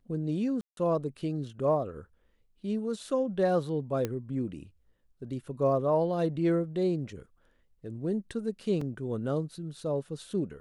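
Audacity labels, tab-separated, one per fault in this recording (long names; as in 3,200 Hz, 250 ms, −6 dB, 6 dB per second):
0.610000	0.770000	drop-out 162 ms
4.050000	4.050000	click −17 dBFS
8.810000	8.810000	drop-out 3.9 ms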